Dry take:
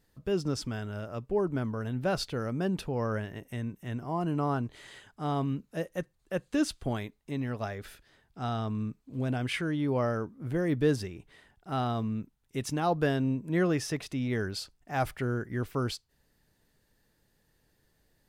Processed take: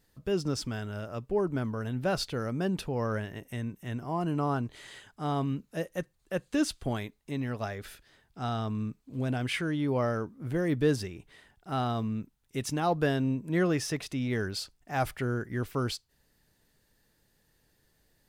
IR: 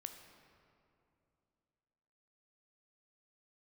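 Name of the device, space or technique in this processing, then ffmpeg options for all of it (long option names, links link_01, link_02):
exciter from parts: -filter_complex "[0:a]asplit=2[link_01][link_02];[link_02]highpass=frequency=2700:poles=1,asoftclip=type=tanh:threshold=-38.5dB,volume=-6.5dB[link_03];[link_01][link_03]amix=inputs=2:normalize=0"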